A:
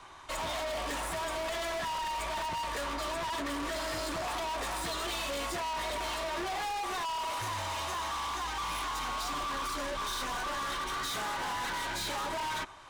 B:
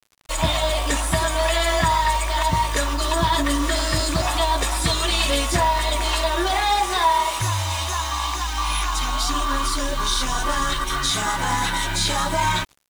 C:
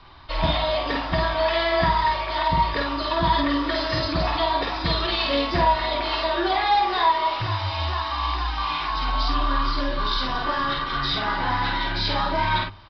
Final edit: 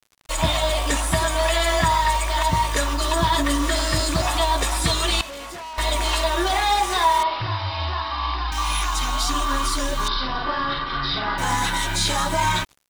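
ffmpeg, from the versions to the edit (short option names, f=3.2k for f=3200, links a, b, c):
-filter_complex "[2:a]asplit=2[a][b];[1:a]asplit=4[c][d][e][f];[c]atrim=end=5.212[g];[0:a]atrim=start=5.208:end=5.782[h];[d]atrim=start=5.778:end=7.232[i];[a]atrim=start=7.228:end=8.522[j];[e]atrim=start=8.518:end=10.082[k];[b]atrim=start=10.078:end=11.382[l];[f]atrim=start=11.378[m];[g][h]acrossfade=d=0.004:c1=hsin:c2=hsin[n];[n][i]acrossfade=d=0.004:c1=hsin:c2=hsin[o];[o][j]acrossfade=d=0.004:c1=hsin:c2=hsin[p];[p][k]acrossfade=d=0.004:c1=hsin:c2=hsin[q];[q][l]acrossfade=d=0.004:c1=hsin:c2=hsin[r];[r][m]acrossfade=d=0.004:c1=hsin:c2=hsin"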